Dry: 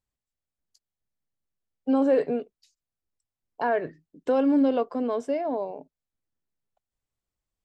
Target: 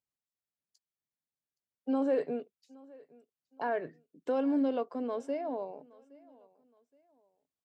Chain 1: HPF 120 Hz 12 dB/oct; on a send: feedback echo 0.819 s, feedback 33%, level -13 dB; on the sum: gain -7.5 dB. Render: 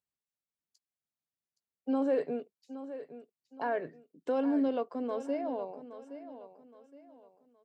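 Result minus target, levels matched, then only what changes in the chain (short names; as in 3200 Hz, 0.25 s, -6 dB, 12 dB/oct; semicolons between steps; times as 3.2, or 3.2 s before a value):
echo-to-direct +11 dB
change: feedback echo 0.819 s, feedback 33%, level -24 dB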